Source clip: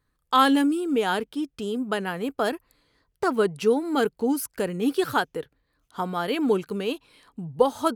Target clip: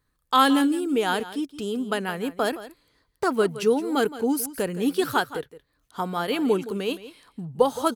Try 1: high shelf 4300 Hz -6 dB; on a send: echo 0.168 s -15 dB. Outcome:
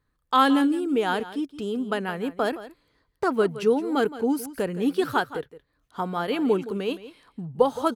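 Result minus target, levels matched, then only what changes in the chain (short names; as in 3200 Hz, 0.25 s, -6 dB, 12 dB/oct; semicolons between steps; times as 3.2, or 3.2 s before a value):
8000 Hz band -8.0 dB
change: high shelf 4300 Hz +4 dB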